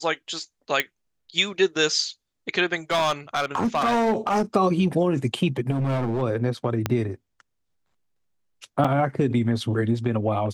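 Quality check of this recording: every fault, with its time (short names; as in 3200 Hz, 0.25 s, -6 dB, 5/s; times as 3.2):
0.8 pop -7 dBFS
2.91–4.42 clipped -17.5 dBFS
5.7–6.23 clipped -21 dBFS
6.86 pop -8 dBFS
8.84–8.85 gap 5.5 ms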